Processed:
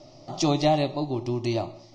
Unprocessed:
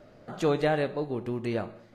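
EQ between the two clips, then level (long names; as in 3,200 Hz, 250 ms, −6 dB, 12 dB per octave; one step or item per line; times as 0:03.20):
low-pass with resonance 5,500 Hz, resonance Q 6.6
phaser with its sweep stopped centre 310 Hz, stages 8
+6.5 dB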